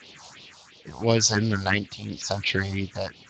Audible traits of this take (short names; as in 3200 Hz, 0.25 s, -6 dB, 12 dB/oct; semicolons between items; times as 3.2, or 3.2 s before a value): a quantiser's noise floor 8-bit, dither triangular; phasing stages 4, 2.9 Hz, lowest notch 300–1600 Hz; tremolo triangle 0.89 Hz, depth 65%; Speex